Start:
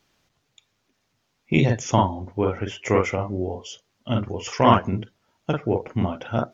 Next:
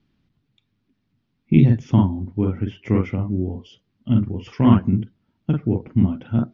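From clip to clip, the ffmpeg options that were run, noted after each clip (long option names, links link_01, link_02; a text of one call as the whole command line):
ffmpeg -i in.wav -af "lowpass=frequency=4500:width=0.5412,lowpass=frequency=4500:width=1.3066,lowshelf=frequency=370:width_type=q:width=1.5:gain=13,volume=-8dB" out.wav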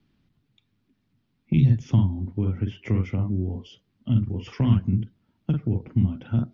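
ffmpeg -i in.wav -filter_complex "[0:a]acrossover=split=160|3000[link_01][link_02][link_03];[link_02]acompressor=threshold=-29dB:ratio=6[link_04];[link_01][link_04][link_03]amix=inputs=3:normalize=0" out.wav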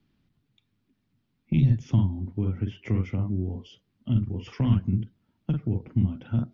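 ffmpeg -i in.wav -af "aeval=exprs='0.422*(cos(1*acos(clip(val(0)/0.422,-1,1)))-cos(1*PI/2))+0.0133*(cos(4*acos(clip(val(0)/0.422,-1,1)))-cos(4*PI/2))':channel_layout=same,volume=-2.5dB" out.wav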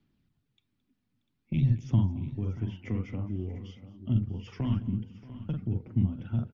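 ffmpeg -i in.wav -af "aphaser=in_gain=1:out_gain=1:delay=4.1:decay=0.29:speed=0.5:type=sinusoidal,aecho=1:1:218|632|696:0.119|0.112|0.158,volume=-5.5dB" out.wav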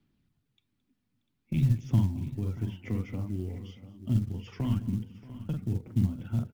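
ffmpeg -i in.wav -af "acrusher=bits=8:mode=log:mix=0:aa=0.000001" out.wav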